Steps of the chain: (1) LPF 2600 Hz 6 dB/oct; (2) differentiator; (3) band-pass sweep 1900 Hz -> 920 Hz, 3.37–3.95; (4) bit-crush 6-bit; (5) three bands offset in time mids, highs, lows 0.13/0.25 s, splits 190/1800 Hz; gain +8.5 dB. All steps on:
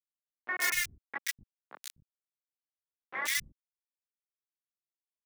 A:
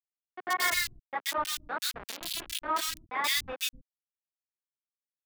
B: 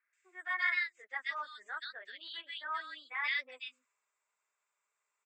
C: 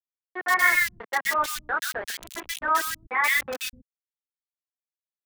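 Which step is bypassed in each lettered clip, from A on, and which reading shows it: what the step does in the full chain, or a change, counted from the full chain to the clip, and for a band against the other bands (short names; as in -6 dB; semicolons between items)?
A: 3, 2 kHz band -8.0 dB; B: 4, distortion -1 dB; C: 2, 8 kHz band -9.5 dB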